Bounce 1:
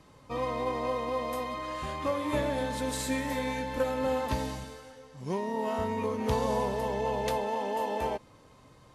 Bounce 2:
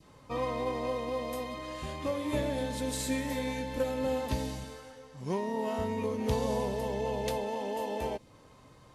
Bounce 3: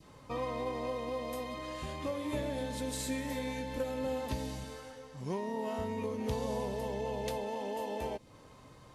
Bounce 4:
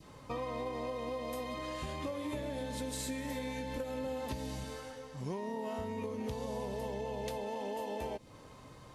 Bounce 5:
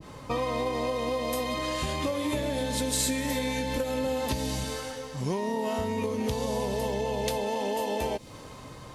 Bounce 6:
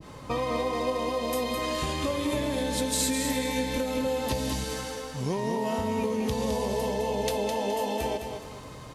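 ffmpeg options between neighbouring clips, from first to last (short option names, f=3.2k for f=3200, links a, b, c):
-af "adynamicequalizer=threshold=0.00447:dfrequency=1200:dqfactor=0.99:tfrequency=1200:tqfactor=0.99:attack=5:release=100:ratio=0.375:range=4:mode=cutabove:tftype=bell"
-af "acompressor=threshold=-42dB:ratio=1.5,volume=1dB"
-af "acompressor=threshold=-37dB:ratio=6,volume=2dB"
-af "adynamicequalizer=threshold=0.00158:dfrequency=2600:dqfactor=0.7:tfrequency=2600:tqfactor=0.7:attack=5:release=100:ratio=0.375:range=2.5:mode=boostabove:tftype=highshelf,volume=9dB"
-af "aecho=1:1:210|420|630|840:0.473|0.166|0.058|0.0203"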